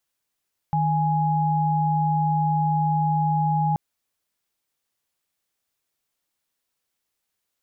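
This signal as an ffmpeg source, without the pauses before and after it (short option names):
-f lavfi -i "aevalsrc='0.0841*(sin(2*PI*155.56*t)+sin(2*PI*830.61*t))':d=3.03:s=44100"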